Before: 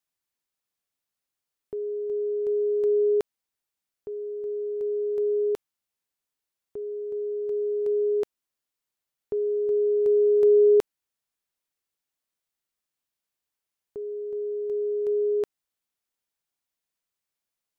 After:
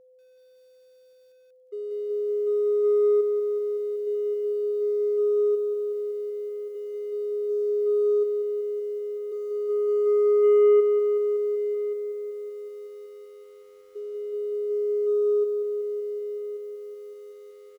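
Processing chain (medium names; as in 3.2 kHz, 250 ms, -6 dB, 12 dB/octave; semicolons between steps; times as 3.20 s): spectral contrast enhancement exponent 3.4; hum notches 50/100/150/200/250/300 Hz; waveshaping leveller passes 1; whistle 510 Hz -48 dBFS; on a send: delay 1130 ms -15 dB; on the sum: bit-crushed delay 188 ms, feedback 80%, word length 9-bit, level -10 dB; trim -5.5 dB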